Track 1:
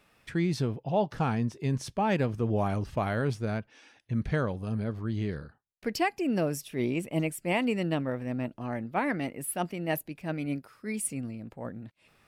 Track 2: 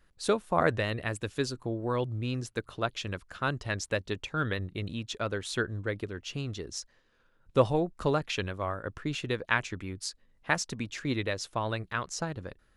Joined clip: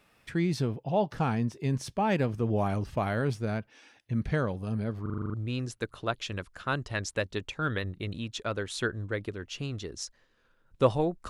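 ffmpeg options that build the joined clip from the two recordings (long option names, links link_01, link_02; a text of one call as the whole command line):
ffmpeg -i cue0.wav -i cue1.wav -filter_complex "[0:a]apad=whole_dur=11.29,atrim=end=11.29,asplit=8[link_01][link_02][link_03][link_04][link_05][link_06][link_07][link_08];[link_01]atrim=end=5.062[link_09];[link_02]atrim=start=5.018:end=5.062[link_10];[link_03]atrim=start=5.018:end=5.062[link_11];[link_04]atrim=start=5.018:end=5.062[link_12];[link_05]atrim=start=5.018:end=5.062[link_13];[link_06]atrim=start=5.018:end=5.062[link_14];[link_07]atrim=start=5.018:end=5.062[link_15];[link_08]atrim=start=5.018:end=5.062[link_16];[1:a]atrim=start=2.088:end=8.04[link_17];[link_09][link_10]acrossfade=duration=0.004:curve1=hsin:curve2=hsin[link_18];[link_18][link_11]acrossfade=duration=0.004:curve1=hsin:curve2=hsin[link_19];[link_19][link_12]acrossfade=duration=0.004:curve1=hsin:curve2=hsin[link_20];[link_20][link_13]acrossfade=duration=0.004:curve1=hsin:curve2=hsin[link_21];[link_21][link_14]acrossfade=duration=0.004:curve1=hsin:curve2=hsin[link_22];[link_22][link_15]acrossfade=duration=0.004:curve1=hsin:curve2=hsin[link_23];[link_23][link_16]acrossfade=duration=0.004:curve1=hsin:curve2=hsin[link_24];[link_24][link_17]acrossfade=duration=0.004:curve1=hsin:curve2=hsin" out.wav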